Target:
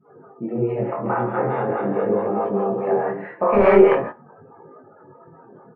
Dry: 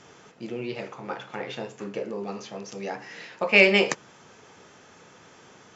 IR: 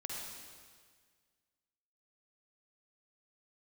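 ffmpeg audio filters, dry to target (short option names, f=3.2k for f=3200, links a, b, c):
-filter_complex "[0:a]asplit=3[a][b][c];[a]afade=t=out:st=1.01:d=0.02[d];[b]aecho=1:1:270|486|658.8|797|907.6:0.631|0.398|0.251|0.158|0.1,afade=t=in:st=1.01:d=0.02,afade=t=out:st=3.12:d=0.02[e];[c]afade=t=in:st=3.12:d=0.02[f];[d][e][f]amix=inputs=3:normalize=0,aeval=exprs='0.794*sin(PI/2*3.55*val(0)/0.794)':c=same,lowshelf=f=150:g=-4[g];[1:a]atrim=start_sample=2205,afade=t=out:st=0.22:d=0.01,atrim=end_sample=10143[h];[g][h]afir=irnorm=-1:irlink=0,afftdn=nr=31:nf=-33,lowpass=f=1.4k:w=0.5412,lowpass=f=1.4k:w=1.3066,acrossover=split=520[i][j];[i]aeval=exprs='val(0)*(1-0.7/2+0.7/2*cos(2*PI*4.7*n/s))':c=same[k];[j]aeval=exprs='val(0)*(1-0.7/2-0.7/2*cos(2*PI*4.7*n/s))':c=same[l];[k][l]amix=inputs=2:normalize=0,flanger=delay=19:depth=6:speed=0.43,volume=5dB"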